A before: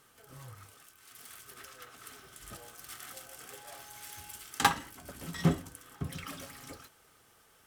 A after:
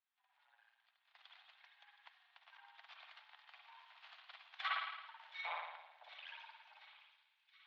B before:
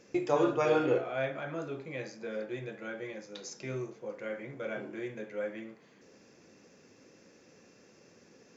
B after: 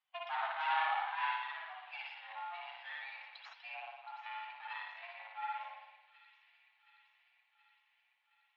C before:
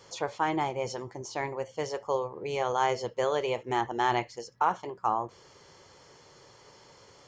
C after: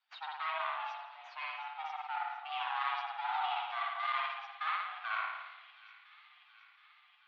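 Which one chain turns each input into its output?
per-bin expansion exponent 2; tilt +2 dB/oct; in parallel at -2 dB: compressor, threshold -51 dBFS; on the sum: careless resampling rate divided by 2×, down none, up zero stuff; soft clip -23.5 dBFS; spring tank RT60 1 s, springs 54 ms, chirp 45 ms, DRR -3 dB; half-wave rectifier; mistuned SSB +330 Hz 410–3400 Hz; on a send: thin delay 0.722 s, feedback 64%, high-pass 2400 Hz, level -13 dB; on the sum: gain +1.5 dB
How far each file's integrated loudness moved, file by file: -10.0, -6.0, -6.5 LU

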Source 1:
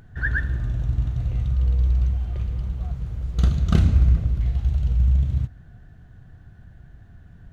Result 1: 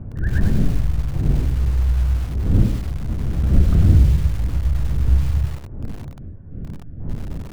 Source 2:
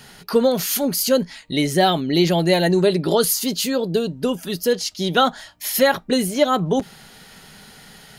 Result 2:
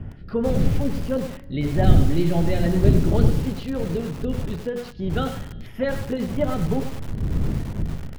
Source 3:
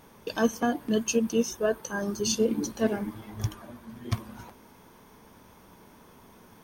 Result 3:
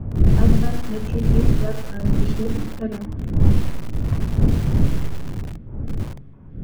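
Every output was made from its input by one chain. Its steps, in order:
wind noise 190 Hz -24 dBFS; low shelf 190 Hz +11 dB; notches 60/120/180/240/300/360/420/480/540 Hz; flange 0.34 Hz, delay 8.9 ms, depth 4 ms, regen -78%; LFO notch square 3 Hz 950–4200 Hz; air absorption 390 m; resonator 140 Hz, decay 1.9 s, mix 60%; Schroeder reverb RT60 1.7 s, combs from 33 ms, DRR 19 dB; lo-fi delay 99 ms, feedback 35%, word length 6-bit, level -8 dB; normalise peaks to -2 dBFS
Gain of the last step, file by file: +6.0, +5.0, +8.5 dB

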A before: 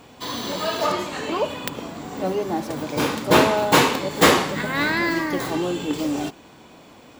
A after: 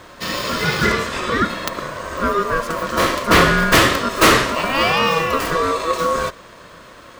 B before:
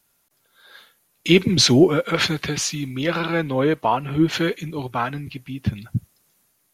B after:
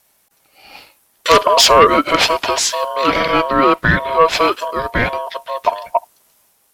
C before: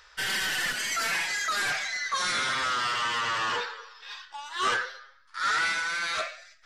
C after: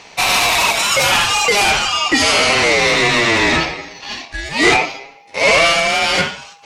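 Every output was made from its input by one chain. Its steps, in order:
ring modulator 810 Hz; added harmonics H 5 -9 dB, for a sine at -1.5 dBFS; normalise peaks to -1.5 dBFS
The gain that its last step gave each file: -0.5, +2.0, +8.5 dB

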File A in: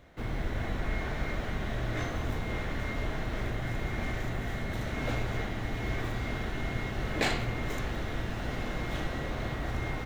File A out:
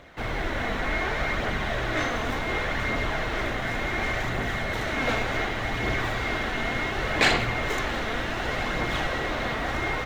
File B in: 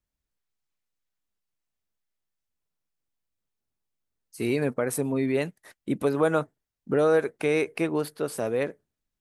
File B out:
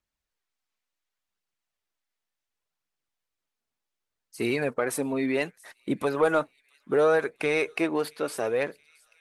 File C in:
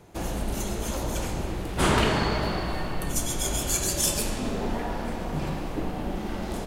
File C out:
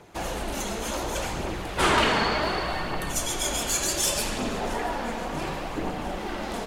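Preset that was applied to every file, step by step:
thin delay 0.673 s, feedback 60%, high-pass 3000 Hz, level -22.5 dB; phaser 0.68 Hz, delay 4.6 ms, feedback 30%; overdrive pedal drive 11 dB, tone 4700 Hz, clips at -8.5 dBFS; match loudness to -27 LUFS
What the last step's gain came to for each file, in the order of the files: +4.5, -2.0, -1.0 dB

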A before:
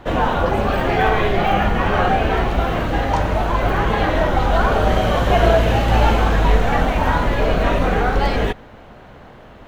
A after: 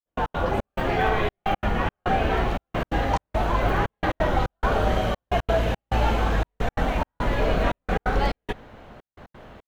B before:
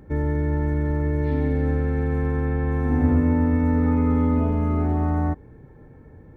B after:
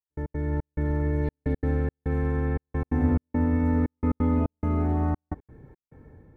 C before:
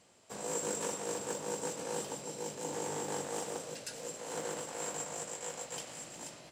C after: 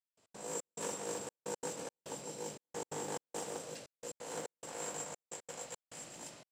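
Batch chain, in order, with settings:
AGC gain up to 5 dB; step gate "..x.xxx..xxxxxx" 175 bpm -60 dB; gain -7.5 dB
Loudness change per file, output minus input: -7.5, -4.5, -4.5 LU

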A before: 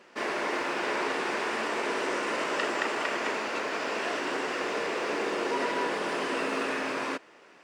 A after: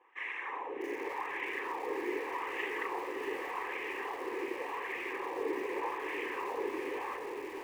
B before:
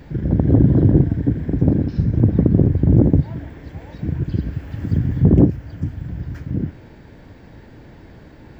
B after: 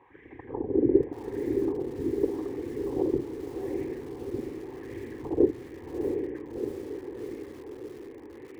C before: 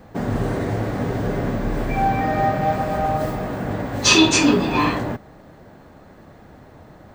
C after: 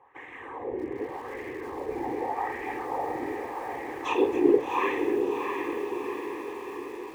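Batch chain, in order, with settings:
whisperiser; LFO band-pass sine 0.85 Hz 350–2100 Hz; fixed phaser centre 950 Hz, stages 8; on a send: diffused feedback echo 0.709 s, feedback 61%, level -5 dB; on the sum: lo-fi delay 0.635 s, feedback 35%, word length 7-bit, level -13 dB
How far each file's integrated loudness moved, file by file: -7.5, -13.0, -10.0 LU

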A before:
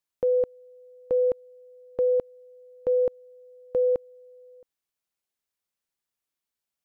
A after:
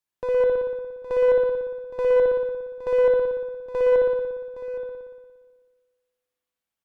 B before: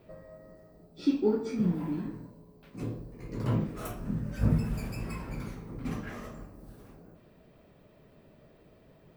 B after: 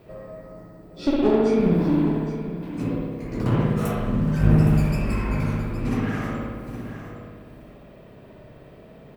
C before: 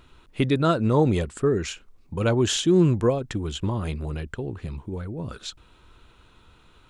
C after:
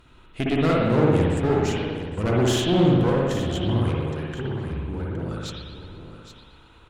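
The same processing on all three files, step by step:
one-sided clip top -30 dBFS; on a send: echo 0.816 s -12 dB; on the sum: spring tank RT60 1.4 s, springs 58 ms, chirp 65 ms, DRR -3.5 dB; Doppler distortion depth 0.11 ms; match loudness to -23 LUFS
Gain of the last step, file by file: -2.5, +7.0, -1.0 dB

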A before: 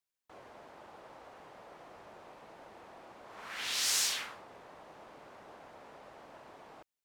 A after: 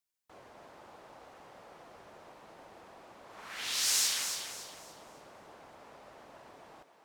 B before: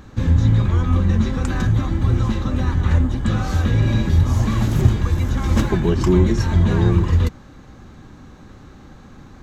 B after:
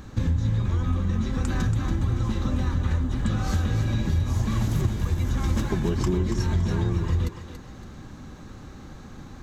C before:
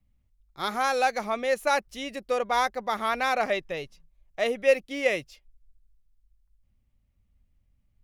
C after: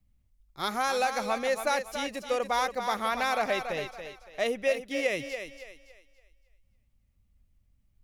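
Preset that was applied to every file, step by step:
compressor, threshold -21 dBFS; tone controls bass +2 dB, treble +4 dB; thinning echo 0.282 s, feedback 34%, high-pass 280 Hz, level -7.5 dB; gain -1.5 dB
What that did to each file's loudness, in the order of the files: +1.0, -7.0, -2.5 LU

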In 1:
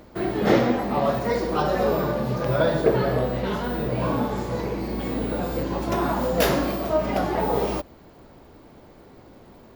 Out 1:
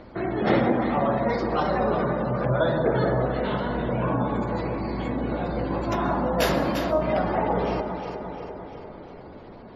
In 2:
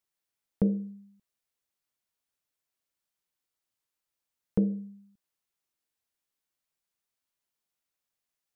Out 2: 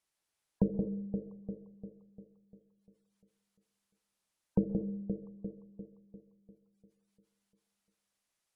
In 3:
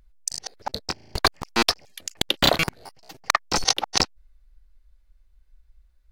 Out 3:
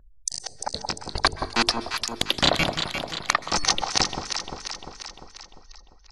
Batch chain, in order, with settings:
steep low-pass 12000 Hz 96 dB/oct; notches 50/100/150/200/250/300/350/400/450 Hz; echo with dull and thin repeats by turns 0.174 s, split 1000 Hz, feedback 71%, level -5 dB; dynamic EQ 450 Hz, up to -3 dB, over -36 dBFS, Q 2.2; in parallel at -1 dB: compressor, threshold -36 dBFS; on the sum: spectral gate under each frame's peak -30 dB strong; plate-style reverb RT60 0.68 s, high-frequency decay 0.7×, pre-delay 0.115 s, DRR 17 dB; gain -2 dB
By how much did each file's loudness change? -1.0, -6.5, -1.0 LU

